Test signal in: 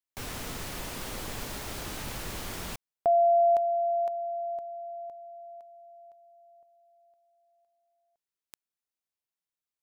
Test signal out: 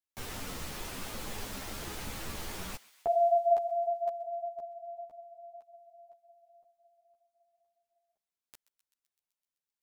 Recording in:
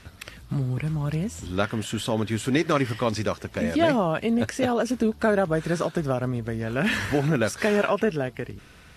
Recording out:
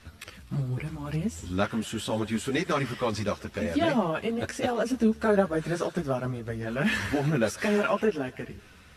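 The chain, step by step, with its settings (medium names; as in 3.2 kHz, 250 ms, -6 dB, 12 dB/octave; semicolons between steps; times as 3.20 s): thinning echo 128 ms, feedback 75%, high-pass 1.1 kHz, level -18.5 dB; three-phase chorus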